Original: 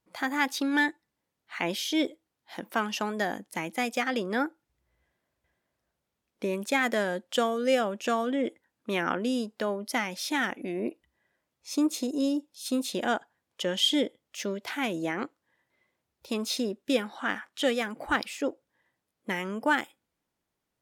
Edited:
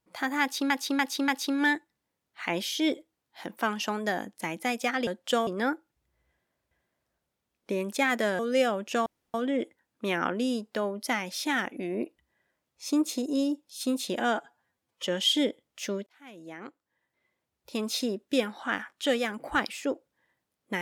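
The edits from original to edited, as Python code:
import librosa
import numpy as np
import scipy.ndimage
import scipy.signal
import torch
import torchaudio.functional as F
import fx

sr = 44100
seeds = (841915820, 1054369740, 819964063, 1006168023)

y = fx.edit(x, sr, fx.repeat(start_s=0.41, length_s=0.29, count=4),
    fx.move(start_s=7.12, length_s=0.4, to_s=4.2),
    fx.insert_room_tone(at_s=8.19, length_s=0.28),
    fx.stretch_span(start_s=13.05, length_s=0.57, factor=1.5),
    fx.fade_in_span(start_s=14.63, length_s=1.82), tone=tone)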